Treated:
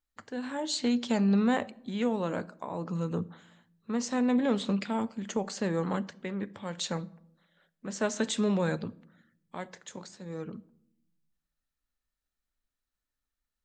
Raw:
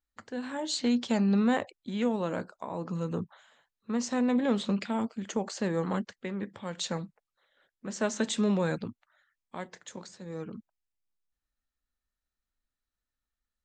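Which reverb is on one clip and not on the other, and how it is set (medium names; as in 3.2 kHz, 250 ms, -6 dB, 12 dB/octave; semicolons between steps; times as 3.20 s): simulated room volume 2000 m³, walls furnished, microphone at 0.36 m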